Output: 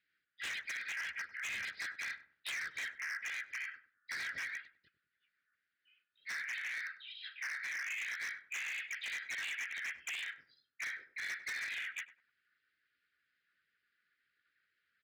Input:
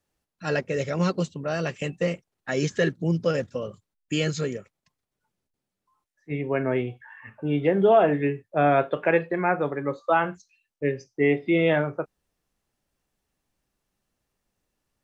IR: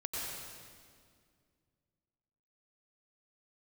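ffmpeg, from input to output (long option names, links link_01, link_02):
-filter_complex "[0:a]afftfilt=real='real(if(lt(b,272),68*(eq(floor(b/68),0)*3+eq(floor(b/68),1)*0+eq(floor(b/68),2)*1+eq(floor(b/68),3)*2)+mod(b,68),b),0)':imag='imag(if(lt(b,272),68*(eq(floor(b/68),0)*3+eq(floor(b/68),1)*0+eq(floor(b/68),2)*1+eq(floor(b/68),3)*2)+mod(b,68),b),0)':win_size=2048:overlap=0.75,asuperstop=centerf=820:order=20:qfactor=0.89,alimiter=limit=-16.5dB:level=0:latency=1:release=13,bass=frequency=250:gain=5,treble=frequency=4000:gain=-6,acompressor=threshold=-34dB:ratio=20,afftfilt=real='hypot(re,im)*cos(2*PI*random(0))':imag='hypot(re,im)*sin(2*PI*random(1))':win_size=512:overlap=0.75,asplit=3[link_01][link_02][link_03];[link_02]asetrate=37084,aresample=44100,atempo=1.18921,volume=-12dB[link_04];[link_03]asetrate=52444,aresample=44100,atempo=0.840896,volume=-1dB[link_05];[link_01][link_04][link_05]amix=inputs=3:normalize=0,aresample=11025,aresample=44100,aeval=exprs='0.0158*(abs(mod(val(0)/0.0158+3,4)-2)-1)':channel_layout=same,highpass=43,lowshelf=frequency=310:gain=-6,asplit=2[link_06][link_07];[link_07]adelay=99,lowpass=frequency=860:poles=1,volume=-10dB,asplit=2[link_08][link_09];[link_09]adelay=99,lowpass=frequency=860:poles=1,volume=0.41,asplit=2[link_10][link_11];[link_11]adelay=99,lowpass=frequency=860:poles=1,volume=0.41,asplit=2[link_12][link_13];[link_13]adelay=99,lowpass=frequency=860:poles=1,volume=0.41[link_14];[link_06][link_08][link_10][link_12][link_14]amix=inputs=5:normalize=0,volume=2dB"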